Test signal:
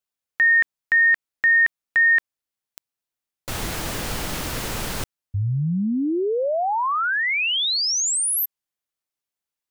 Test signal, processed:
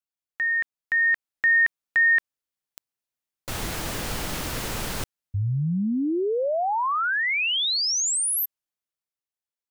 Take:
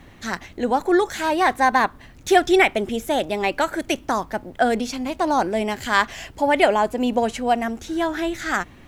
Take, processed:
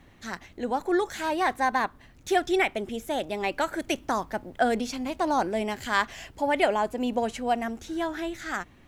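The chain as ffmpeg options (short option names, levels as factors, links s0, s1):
-af "dynaudnorm=f=120:g=17:m=2.11,volume=0.376"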